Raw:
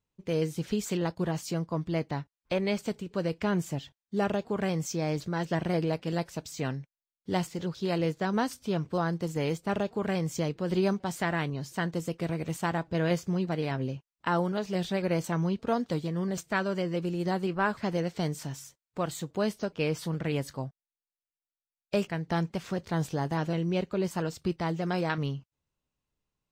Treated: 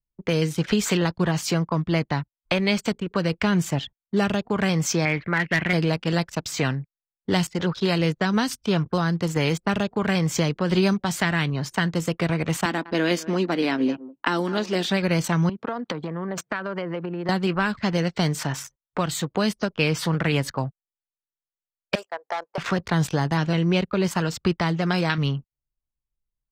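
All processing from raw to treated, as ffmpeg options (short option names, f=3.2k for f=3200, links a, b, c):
-filter_complex "[0:a]asettb=1/sr,asplit=3[a][b][c];[a]atrim=end=5.054[d];[b]atrim=start=5.05:end=5.73,asetpts=PTS-STARTPTS,afade=t=in:d=0.004:c=qsin,afade=t=out:st=0.676:d=0.004:c=qsin,lowpass=f=2.1k:t=q:w=4.3,asoftclip=type=hard:threshold=-20.5dB,lowshelf=f=160:g=-7[e];[c]atrim=start=5.726[f];[d][e]acrossfade=d=0.004:c1=hsin:c2=qsin[g];[g][f]acrossfade=d=0.004:c1=qsin:c2=hsin,asettb=1/sr,asplit=3[h][i][j];[h]atrim=end=12.654[k];[i]atrim=start=12.65:end=14.89,asetpts=PTS-STARTPTS,afade=t=in:d=0.004:c=qsin,afade=t=out:st=2.236:d=0.004:c=qsin,lowshelf=f=180:t=q:w=3:g=-13.5,aecho=1:1:202:0.1,atrim=end_sample=98784[l];[j]atrim=start=14.886[m];[k][l]acrossfade=d=0.004:c1=hsin:c2=qsin[n];[n][m]acrossfade=d=0.004:c1=qsin:c2=hsin,asettb=1/sr,asplit=3[o][p][q];[o]atrim=end=15.494[r];[p]atrim=start=15.49:end=17.29,asetpts=PTS-STARTPTS,afade=t=in:d=0.004:c=qsin,afade=t=out:st=1.796:d=0.004:c=qsin,highpass=f=120:w=0.5412,highpass=f=120:w=1.3066,acompressor=threshold=-36dB:ratio=12:attack=3.2:release=140:knee=1:detection=peak[s];[q]atrim=start=17.286[t];[r][s]acrossfade=d=0.004:c1=hsin:c2=qsin[u];[u][t]acrossfade=d=0.004:c1=qsin:c2=hsin,asettb=1/sr,asplit=3[v][w][x];[v]atrim=end=21.954[y];[w]atrim=start=21.95:end=22.58,asetpts=PTS-STARTPTS,afade=t=in:d=0.004:c=qsin,afade=t=out:st=0.626:d=0.004:c=qsin,highpass=f=550:w=0.5412,highpass=f=550:w=1.3066,equalizer=f=2.2k:t=o:w=2:g=-14.5,asoftclip=type=hard:threshold=-35.5dB[z];[x]atrim=start=22.576[aa];[y][z]acrossfade=d=0.004:c1=hsin:c2=qsin[ab];[ab][aa]acrossfade=d=0.004:c1=qsin:c2=hsin,anlmdn=0.0251,equalizer=f=1.4k:t=o:w=2.7:g=13.5,acrossover=split=260|3000[ac][ad][ae];[ad]acompressor=threshold=-33dB:ratio=10[af];[ac][af][ae]amix=inputs=3:normalize=0,volume=8dB"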